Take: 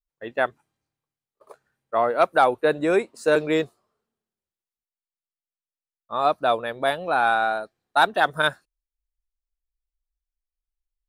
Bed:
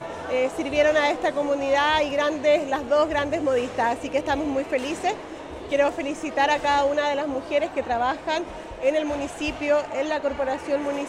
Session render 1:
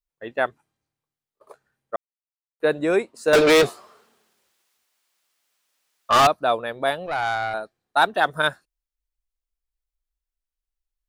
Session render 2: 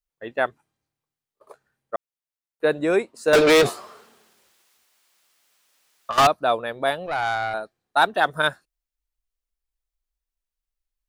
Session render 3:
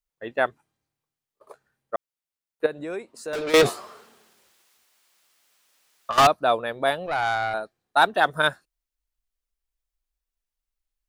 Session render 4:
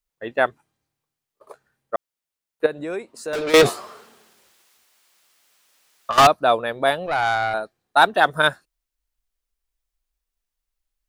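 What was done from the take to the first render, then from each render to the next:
1.96–2.6 mute; 3.33–6.27 overdrive pedal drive 33 dB, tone 7400 Hz, clips at -8 dBFS; 7.06–7.54 tube stage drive 18 dB, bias 0.6
3.64–6.18 negative-ratio compressor -26 dBFS
2.66–3.54 compressor 2:1, threshold -39 dBFS
gain +3.5 dB

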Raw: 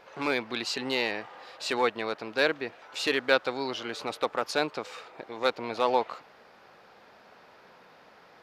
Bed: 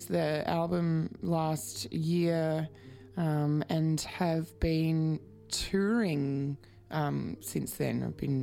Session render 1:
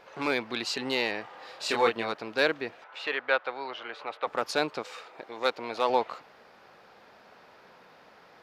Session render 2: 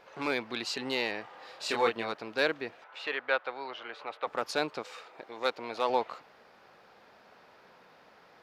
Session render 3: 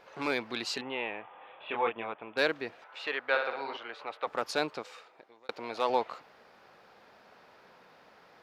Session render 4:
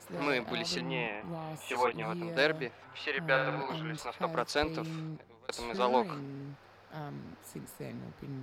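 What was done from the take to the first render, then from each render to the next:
1.39–2.12 doubler 26 ms -3.5 dB; 2.84–4.27 three-band isolator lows -16 dB, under 490 Hz, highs -22 dB, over 3200 Hz; 4.82–5.9 low shelf 200 Hz -9.5 dB
gain -3 dB
0.81–2.37 rippled Chebyshev low-pass 3500 Hz, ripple 6 dB; 3.26–3.77 flutter echo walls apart 10 m, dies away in 0.67 s; 4.67–5.49 fade out linear
add bed -11 dB

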